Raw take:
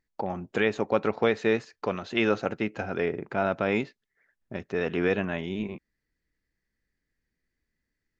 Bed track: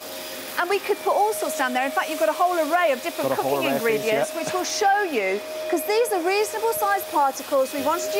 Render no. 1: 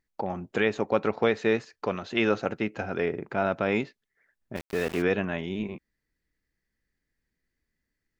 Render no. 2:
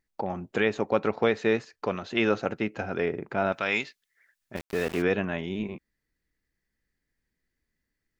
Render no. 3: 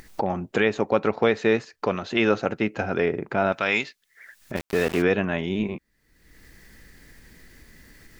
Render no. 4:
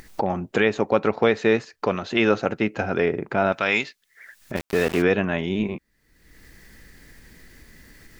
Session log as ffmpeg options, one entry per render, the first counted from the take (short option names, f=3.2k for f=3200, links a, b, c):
-filter_complex "[0:a]asplit=3[a][b][c];[a]afade=t=out:st=4.55:d=0.02[d];[b]aeval=exprs='val(0)*gte(abs(val(0)),0.0188)':c=same,afade=t=in:st=4.55:d=0.02,afade=t=out:st=5.01:d=0.02[e];[c]afade=t=in:st=5.01:d=0.02[f];[d][e][f]amix=inputs=3:normalize=0"
-filter_complex "[0:a]asettb=1/sr,asplit=3[a][b][c];[a]atrim=end=3.524[d];[b]atrim=start=3.52:end=4.55,asetpts=PTS-STARTPTS,afade=t=in:d=0.004:c=qsin,afade=t=out:st=1.026:d=0.004:c=qsin,tiltshelf=f=1.1k:g=-9.5[e];[c]atrim=start=4.546[f];[d][e]acrossfade=d=0.004:c1=hsin:c2=qsin[g];[g][f]acrossfade=d=0.004:c1=qsin:c2=hsin"
-filter_complex "[0:a]asplit=2[a][b];[b]alimiter=limit=-17.5dB:level=0:latency=1:release=443,volume=0dB[c];[a][c]amix=inputs=2:normalize=0,acompressor=mode=upward:threshold=-28dB:ratio=2.5"
-af "volume=1.5dB"